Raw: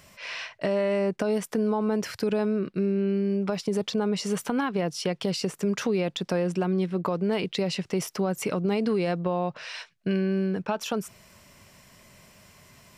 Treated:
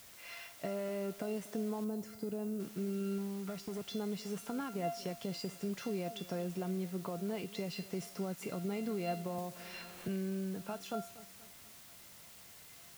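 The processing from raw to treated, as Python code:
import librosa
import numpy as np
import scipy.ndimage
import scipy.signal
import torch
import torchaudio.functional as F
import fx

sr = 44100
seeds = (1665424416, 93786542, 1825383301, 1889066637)

y = fx.overload_stage(x, sr, gain_db=24.0, at=(3.18, 3.84))
y = scipy.signal.sosfilt(scipy.signal.butter(2, 55.0, 'highpass', fs=sr, output='sos'), y)
y = fx.low_shelf(y, sr, hz=490.0, db=6.5)
y = fx.comb_fb(y, sr, f0_hz=690.0, decay_s=0.4, harmonics='all', damping=0.0, mix_pct=90)
y = fx.echo_feedback(y, sr, ms=239, feedback_pct=48, wet_db=-18.0)
y = fx.dmg_noise_colour(y, sr, seeds[0], colour='white', level_db=-58.0)
y = fx.peak_eq(y, sr, hz=2600.0, db=-9.0, octaves=2.8, at=(1.84, 2.6))
y = fx.band_squash(y, sr, depth_pct=70, at=(9.38, 10.08))
y = F.gain(torch.from_numpy(y), 2.0).numpy()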